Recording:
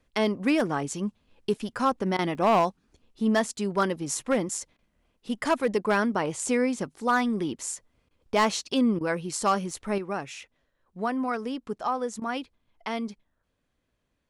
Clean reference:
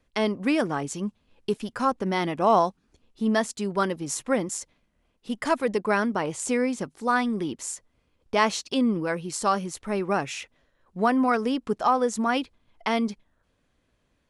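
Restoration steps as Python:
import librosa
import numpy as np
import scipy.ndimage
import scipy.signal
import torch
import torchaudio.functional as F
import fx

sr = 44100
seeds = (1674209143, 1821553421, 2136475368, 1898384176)

y = fx.fix_declip(x, sr, threshold_db=-15.5)
y = fx.fix_interpolate(y, sr, at_s=(2.35, 7.79, 9.71), length_ms=1.5)
y = fx.fix_interpolate(y, sr, at_s=(2.17, 4.77, 8.09, 8.99, 12.2), length_ms=16.0)
y = fx.fix_level(y, sr, at_s=9.98, step_db=6.5)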